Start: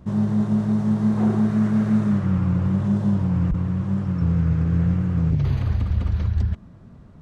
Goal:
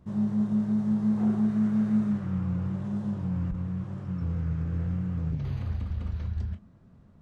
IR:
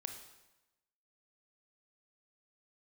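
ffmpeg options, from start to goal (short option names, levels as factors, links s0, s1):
-filter_complex "[1:a]atrim=start_sample=2205,atrim=end_sample=3528,asetrate=83790,aresample=44100[s0];[0:a][s0]afir=irnorm=-1:irlink=0,volume=0.841"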